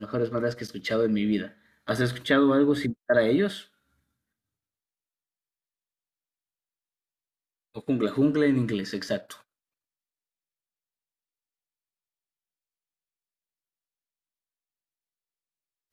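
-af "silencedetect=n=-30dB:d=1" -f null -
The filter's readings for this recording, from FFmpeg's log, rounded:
silence_start: 3.59
silence_end: 7.77 | silence_duration: 4.18
silence_start: 9.32
silence_end: 15.93 | silence_duration: 6.61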